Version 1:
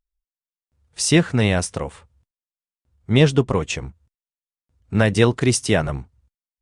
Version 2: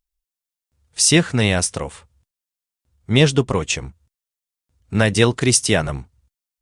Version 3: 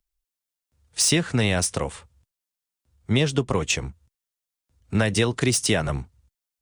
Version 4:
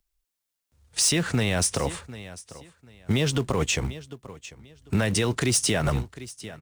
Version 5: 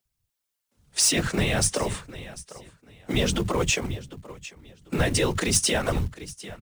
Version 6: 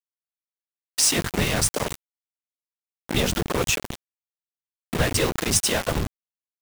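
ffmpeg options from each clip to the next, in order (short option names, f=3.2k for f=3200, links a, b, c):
-af "highshelf=f=2.8k:g=8"
-filter_complex "[0:a]acrossover=split=140|540|3700[a][b][c][d];[d]asoftclip=type=tanh:threshold=-14dB[e];[a][b][c][e]amix=inputs=4:normalize=0,acompressor=threshold=-17dB:ratio=6"
-filter_complex "[0:a]aecho=1:1:745|1490:0.0794|0.0191,asplit=2[a][b];[b]acrusher=bits=2:mode=log:mix=0:aa=0.000001,volume=-11dB[c];[a][c]amix=inputs=2:normalize=0,alimiter=limit=-16dB:level=0:latency=1:release=47,volume=1.5dB"
-filter_complex "[0:a]afftfilt=real='hypot(re,im)*cos(2*PI*random(0))':imag='hypot(re,im)*sin(2*PI*random(1))':win_size=512:overlap=0.75,acrossover=split=180[a][b];[a]adelay=50[c];[c][b]amix=inputs=2:normalize=0,acrusher=bits=7:mode=log:mix=0:aa=0.000001,volume=7dB"
-af "aeval=exprs='val(0)*gte(abs(val(0)),0.0631)':c=same,volume=1.5dB"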